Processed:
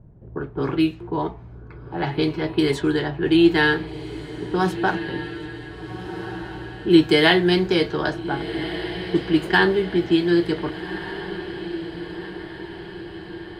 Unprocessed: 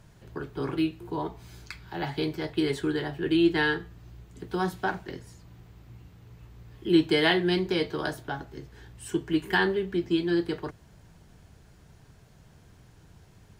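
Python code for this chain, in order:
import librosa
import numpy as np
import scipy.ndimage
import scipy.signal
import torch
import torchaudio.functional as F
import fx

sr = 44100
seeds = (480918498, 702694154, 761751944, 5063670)

y = fx.env_lowpass(x, sr, base_hz=430.0, full_db=-23.0)
y = fx.echo_diffused(y, sr, ms=1536, feedback_pct=56, wet_db=-12)
y = y * 10.0 ** (7.0 / 20.0)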